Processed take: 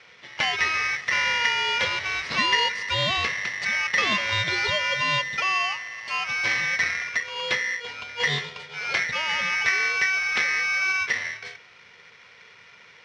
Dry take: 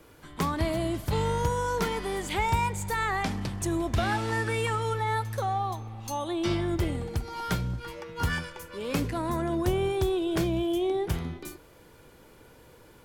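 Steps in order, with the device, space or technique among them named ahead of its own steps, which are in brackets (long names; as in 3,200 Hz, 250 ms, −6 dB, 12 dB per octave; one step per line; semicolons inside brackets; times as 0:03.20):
ring modulator pedal into a guitar cabinet (ring modulator with a square carrier 1,900 Hz; loudspeaker in its box 91–4,500 Hz, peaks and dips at 300 Hz −10 dB, 830 Hz −4 dB, 1,600 Hz −8 dB)
level +6.5 dB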